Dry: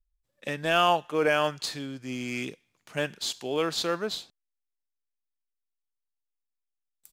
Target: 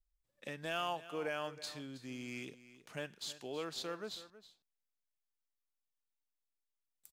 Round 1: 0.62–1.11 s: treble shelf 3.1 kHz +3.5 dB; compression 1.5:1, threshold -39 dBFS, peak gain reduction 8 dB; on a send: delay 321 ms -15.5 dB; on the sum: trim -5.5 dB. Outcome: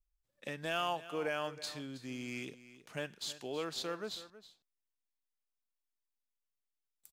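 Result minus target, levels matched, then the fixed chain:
compression: peak gain reduction -2.5 dB
0.62–1.11 s: treble shelf 3.1 kHz +3.5 dB; compression 1.5:1, threshold -47 dBFS, peak gain reduction 11 dB; on a send: delay 321 ms -15.5 dB; on the sum: trim -5.5 dB

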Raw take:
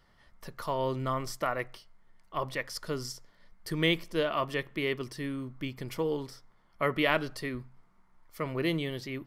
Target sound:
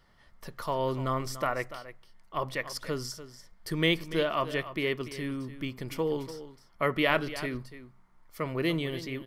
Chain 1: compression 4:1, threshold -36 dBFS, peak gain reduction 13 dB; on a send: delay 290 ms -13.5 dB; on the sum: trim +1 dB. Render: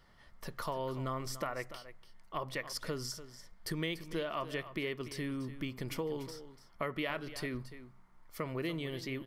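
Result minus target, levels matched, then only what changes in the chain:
compression: peak gain reduction +13 dB
remove: compression 4:1, threshold -36 dBFS, peak gain reduction 13 dB

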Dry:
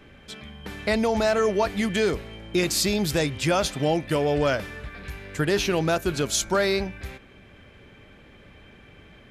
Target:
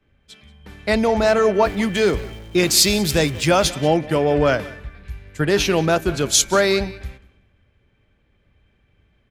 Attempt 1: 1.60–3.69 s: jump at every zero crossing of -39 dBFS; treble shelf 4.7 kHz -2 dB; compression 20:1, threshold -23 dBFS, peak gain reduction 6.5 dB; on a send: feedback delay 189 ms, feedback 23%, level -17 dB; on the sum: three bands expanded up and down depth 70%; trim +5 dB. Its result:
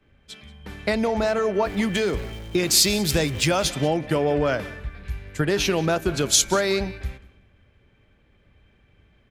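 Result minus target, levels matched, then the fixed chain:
compression: peak gain reduction +6.5 dB
1.60–3.69 s: jump at every zero crossing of -39 dBFS; treble shelf 4.7 kHz -2 dB; on a send: feedback delay 189 ms, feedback 23%, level -17 dB; on the sum: three bands expanded up and down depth 70%; trim +5 dB

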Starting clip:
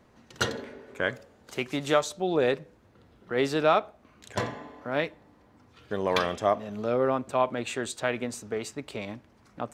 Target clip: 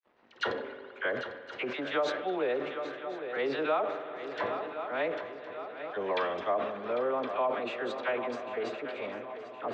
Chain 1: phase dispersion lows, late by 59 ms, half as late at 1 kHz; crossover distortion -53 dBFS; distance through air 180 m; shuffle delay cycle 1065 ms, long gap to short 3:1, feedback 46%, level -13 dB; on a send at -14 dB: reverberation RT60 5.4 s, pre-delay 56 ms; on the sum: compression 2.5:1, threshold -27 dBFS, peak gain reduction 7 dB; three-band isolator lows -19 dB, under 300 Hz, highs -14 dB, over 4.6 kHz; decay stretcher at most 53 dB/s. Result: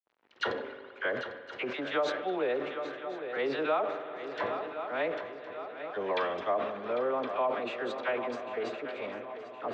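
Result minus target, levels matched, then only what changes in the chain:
crossover distortion: distortion +9 dB
change: crossover distortion -63 dBFS

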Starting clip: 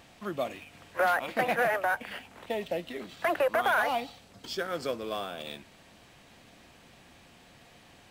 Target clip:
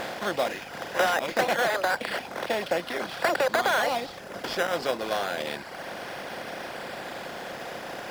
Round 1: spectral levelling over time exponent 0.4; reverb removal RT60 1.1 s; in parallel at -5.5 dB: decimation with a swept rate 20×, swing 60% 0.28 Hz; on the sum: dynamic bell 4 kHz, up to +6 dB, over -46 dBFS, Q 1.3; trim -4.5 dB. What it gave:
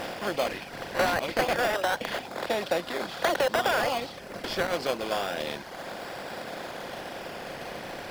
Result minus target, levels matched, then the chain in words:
decimation with a swept rate: distortion +11 dB
spectral levelling over time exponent 0.4; reverb removal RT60 1.1 s; in parallel at -5.5 dB: decimation with a swept rate 8×, swing 60% 0.28 Hz; on the sum: dynamic bell 4 kHz, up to +6 dB, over -46 dBFS, Q 1.3; trim -4.5 dB

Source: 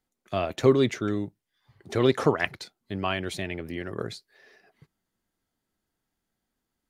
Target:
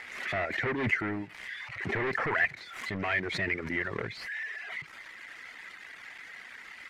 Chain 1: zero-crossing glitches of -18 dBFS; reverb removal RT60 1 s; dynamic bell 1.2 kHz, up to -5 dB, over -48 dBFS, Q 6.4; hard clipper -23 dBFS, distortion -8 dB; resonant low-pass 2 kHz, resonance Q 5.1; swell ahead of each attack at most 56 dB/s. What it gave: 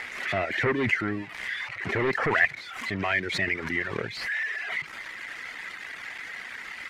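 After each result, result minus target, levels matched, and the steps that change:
zero-crossing glitches: distortion +8 dB; hard clipper: distortion -6 dB
change: zero-crossing glitches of -26 dBFS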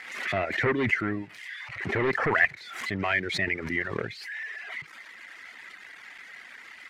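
hard clipper: distortion -4 dB
change: hard clipper -30.5 dBFS, distortion -2 dB

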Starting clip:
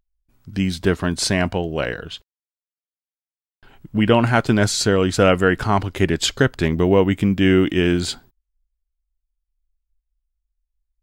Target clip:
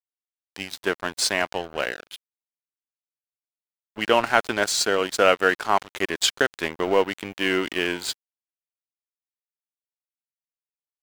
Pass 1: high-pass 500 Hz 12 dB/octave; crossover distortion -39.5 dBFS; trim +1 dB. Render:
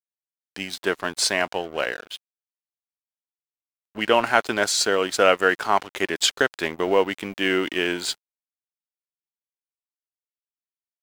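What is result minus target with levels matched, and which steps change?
crossover distortion: distortion -6 dB
change: crossover distortion -32.5 dBFS

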